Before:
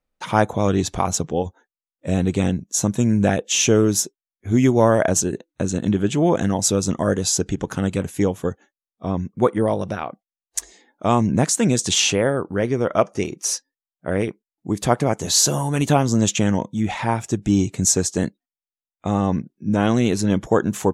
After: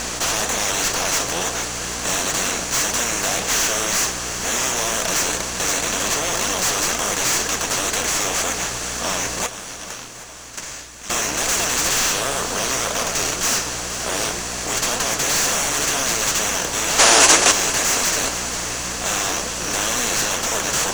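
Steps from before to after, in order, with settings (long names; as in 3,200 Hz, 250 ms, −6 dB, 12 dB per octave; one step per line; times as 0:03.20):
compressor on every frequency bin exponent 0.2
meter weighting curve ITU-R 468
hum with harmonics 60 Hz, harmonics 29, −26 dBFS −4 dB per octave
0:09.46–0:11.10: guitar amp tone stack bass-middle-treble 6-0-2
in parallel at −3.5 dB: decimation without filtering 10×
on the sum: flanger 2 Hz, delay 3.6 ms, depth 4.3 ms, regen +64%
soft clipping −7.5 dBFS, distortion −7 dB
0:16.99–0:17.51: gain on a spectral selection 240–11,000 Hz +10 dB
on a send: feedback echo with a long and a short gap by turns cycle 777 ms, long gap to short 1.5 to 1, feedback 51%, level −14.5 dB
on the sum: level −9 dB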